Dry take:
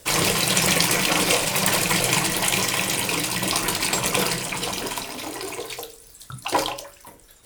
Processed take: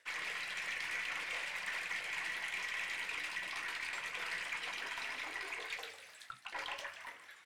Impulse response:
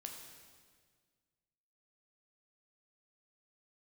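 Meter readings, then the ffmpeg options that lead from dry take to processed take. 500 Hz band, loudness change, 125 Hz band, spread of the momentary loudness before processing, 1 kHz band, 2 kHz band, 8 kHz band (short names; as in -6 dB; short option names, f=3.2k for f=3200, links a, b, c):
-26.5 dB, -18.5 dB, under -35 dB, 13 LU, -20.0 dB, -11.5 dB, -29.0 dB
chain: -filter_complex "[0:a]areverse,acompressor=threshold=-34dB:ratio=12,areverse,bandpass=f=1.9k:t=q:w=3:csg=0,aeval=exprs='0.0299*(cos(1*acos(clip(val(0)/0.0299,-1,1)))-cos(1*PI/2))+0.000596*(cos(8*acos(clip(val(0)/0.0299,-1,1)))-cos(8*PI/2))':c=same,asoftclip=type=tanh:threshold=-39dB,asplit=7[a][b][c][d][e][f][g];[b]adelay=150,afreqshift=83,volume=-12.5dB[h];[c]adelay=300,afreqshift=166,volume=-17.7dB[i];[d]adelay=450,afreqshift=249,volume=-22.9dB[j];[e]adelay=600,afreqshift=332,volume=-28.1dB[k];[f]adelay=750,afreqshift=415,volume=-33.3dB[l];[g]adelay=900,afreqshift=498,volume=-38.5dB[m];[a][h][i][j][k][l][m]amix=inputs=7:normalize=0,volume=7.5dB"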